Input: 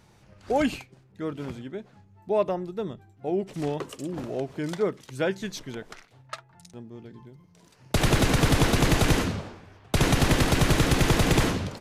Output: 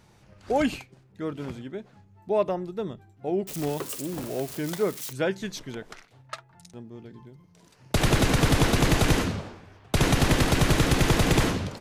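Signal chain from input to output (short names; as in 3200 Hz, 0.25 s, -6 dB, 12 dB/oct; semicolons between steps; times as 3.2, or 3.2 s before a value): 3.47–5.13 switching spikes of -28 dBFS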